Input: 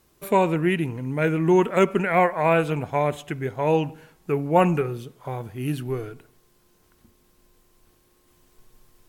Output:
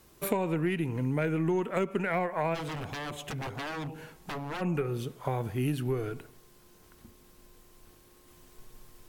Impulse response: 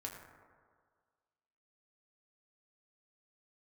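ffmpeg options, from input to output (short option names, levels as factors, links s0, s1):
-filter_complex "[0:a]acrossover=split=420[s0][s1];[s1]acompressor=threshold=0.0891:ratio=6[s2];[s0][s2]amix=inputs=2:normalize=0,aeval=exprs='0.355*(cos(1*acos(clip(val(0)/0.355,-1,1)))-cos(1*PI/2))+0.00708*(cos(6*acos(clip(val(0)/0.355,-1,1)))-cos(6*PI/2))':c=same,acompressor=threshold=0.0316:ratio=6,asplit=3[s3][s4][s5];[s3]afade=t=out:st=2.54:d=0.02[s6];[s4]aeval=exprs='0.0188*(abs(mod(val(0)/0.0188+3,4)-2)-1)':c=same,afade=t=in:st=2.54:d=0.02,afade=t=out:st=4.6:d=0.02[s7];[s5]afade=t=in:st=4.6:d=0.02[s8];[s6][s7][s8]amix=inputs=3:normalize=0,volume=1.5"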